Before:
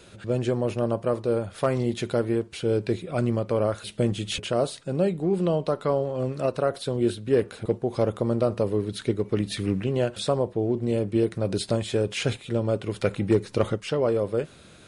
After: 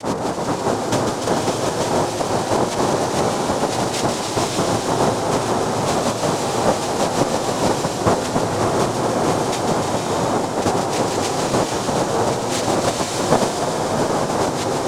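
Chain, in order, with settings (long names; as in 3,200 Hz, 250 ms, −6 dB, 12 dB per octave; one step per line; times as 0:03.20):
slices reordered back to front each 183 ms, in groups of 5
cochlear-implant simulation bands 2
in parallel at −4.5 dB: asymmetric clip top −27.5 dBFS
on the sum: delay with a high-pass on its return 147 ms, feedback 80%, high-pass 2,700 Hz, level −5 dB
slow-attack reverb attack 610 ms, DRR 0 dB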